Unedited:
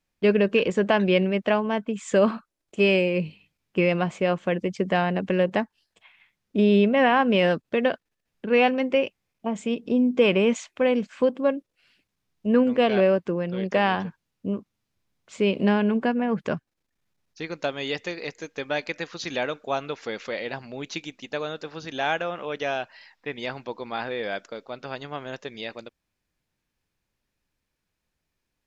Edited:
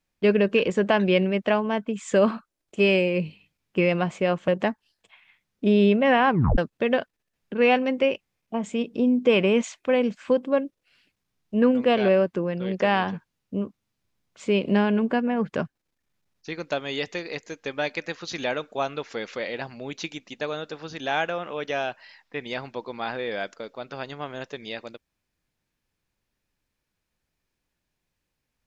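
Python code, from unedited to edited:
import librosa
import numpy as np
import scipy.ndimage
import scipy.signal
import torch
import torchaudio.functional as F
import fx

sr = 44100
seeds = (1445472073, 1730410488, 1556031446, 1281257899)

y = fx.edit(x, sr, fx.cut(start_s=4.48, length_s=0.92),
    fx.tape_stop(start_s=7.21, length_s=0.29), tone=tone)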